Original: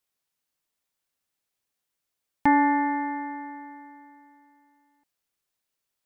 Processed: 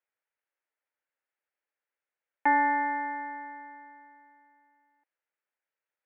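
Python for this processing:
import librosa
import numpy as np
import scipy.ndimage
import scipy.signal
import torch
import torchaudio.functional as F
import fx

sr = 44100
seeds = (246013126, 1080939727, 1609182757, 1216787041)

y = fx.cabinet(x, sr, low_hz=410.0, low_slope=24, high_hz=2100.0, hz=(410.0, 710.0, 1100.0), db=(-6, -7, -9))
y = F.gain(torch.from_numpy(y), 2.0).numpy()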